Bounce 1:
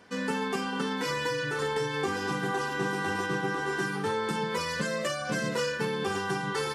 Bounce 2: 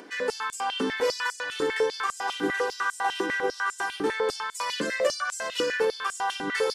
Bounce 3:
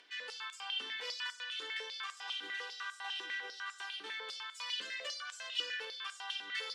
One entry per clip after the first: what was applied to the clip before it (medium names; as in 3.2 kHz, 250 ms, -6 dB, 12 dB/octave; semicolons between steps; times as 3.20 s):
upward compressor, threshold -44 dBFS; step-sequenced high-pass 10 Hz 310–7600 Hz
band-pass filter 3.3 kHz, Q 2.4; reverberation RT60 0.65 s, pre-delay 5 ms, DRR 12.5 dB; trim -2 dB